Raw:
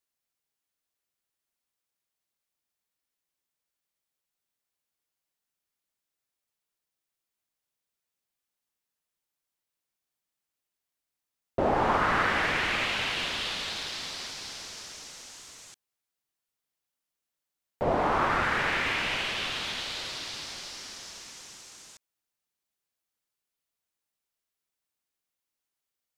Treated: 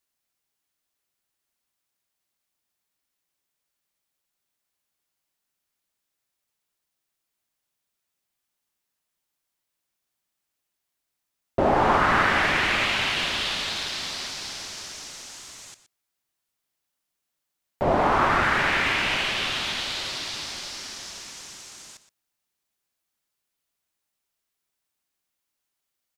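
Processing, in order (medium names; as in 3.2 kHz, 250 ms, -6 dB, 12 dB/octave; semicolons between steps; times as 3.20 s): band-stop 480 Hz, Q 12; delay 121 ms -14 dB; trim +5 dB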